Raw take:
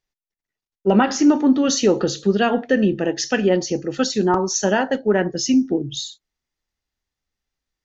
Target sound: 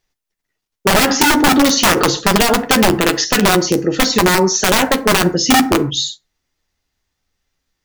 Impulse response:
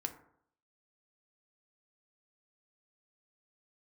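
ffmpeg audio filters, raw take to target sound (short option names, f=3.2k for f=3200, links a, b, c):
-filter_complex "[0:a]acrossover=split=5300[a][b];[b]acompressor=threshold=-33dB:ratio=4:attack=1:release=60[c];[a][c]amix=inputs=2:normalize=0,aeval=exprs='(mod(3.76*val(0)+1,2)-1)/3.76':c=same,asplit=2[d][e];[1:a]atrim=start_sample=2205,atrim=end_sample=6174,adelay=11[f];[e][f]afir=irnorm=-1:irlink=0,volume=-8.5dB[g];[d][g]amix=inputs=2:normalize=0,alimiter=level_in=13.5dB:limit=-1dB:release=50:level=0:latency=1,volume=-3.5dB"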